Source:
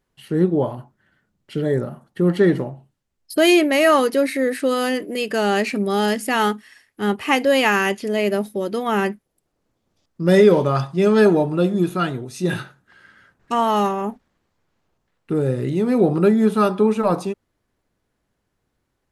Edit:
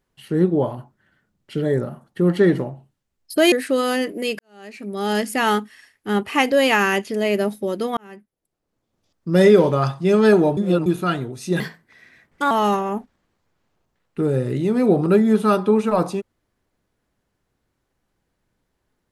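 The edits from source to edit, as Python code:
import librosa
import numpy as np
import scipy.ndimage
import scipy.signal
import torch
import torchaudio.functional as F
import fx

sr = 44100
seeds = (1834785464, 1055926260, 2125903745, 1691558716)

y = fx.edit(x, sr, fx.cut(start_s=3.52, length_s=0.93),
    fx.fade_in_span(start_s=5.32, length_s=0.82, curve='qua'),
    fx.fade_in_span(start_s=8.9, length_s=1.32),
    fx.reverse_span(start_s=11.5, length_s=0.29),
    fx.speed_span(start_s=12.53, length_s=1.1, speed=1.21), tone=tone)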